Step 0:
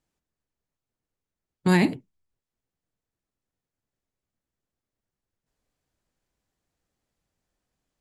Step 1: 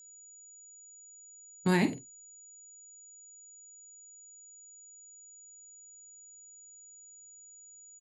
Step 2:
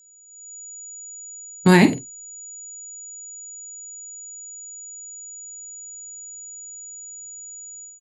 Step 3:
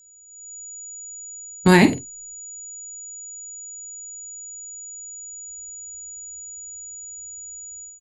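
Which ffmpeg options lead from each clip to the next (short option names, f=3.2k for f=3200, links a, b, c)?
-filter_complex "[0:a]aeval=exprs='val(0)+0.00501*sin(2*PI*6900*n/s)':c=same,asplit=2[a][b];[b]adelay=47,volume=-12dB[c];[a][c]amix=inputs=2:normalize=0,volume=-6dB"
-af "dynaudnorm=f=270:g=3:m=14.5dB,volume=1dB"
-af "lowshelf=f=100:t=q:w=1.5:g=8.5,volume=1dB"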